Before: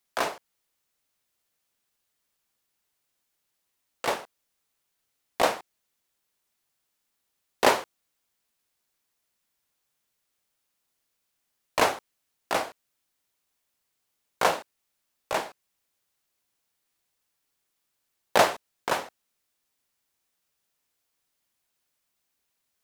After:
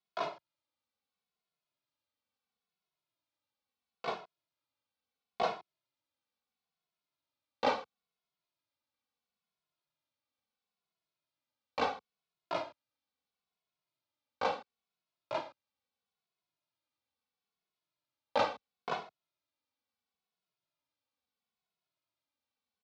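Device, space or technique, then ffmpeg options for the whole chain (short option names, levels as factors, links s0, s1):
barber-pole flanger into a guitar amplifier: -filter_complex "[0:a]asplit=2[s0][s1];[s1]adelay=2.3,afreqshift=-0.74[s2];[s0][s2]amix=inputs=2:normalize=1,asoftclip=type=tanh:threshold=0.224,highpass=82,equalizer=f=380:t=q:w=4:g=-5,equalizer=f=1800:t=q:w=4:g=-10,equalizer=f=2900:t=q:w=4:g=-4,lowpass=f=4400:w=0.5412,lowpass=f=4400:w=1.3066,volume=0.631"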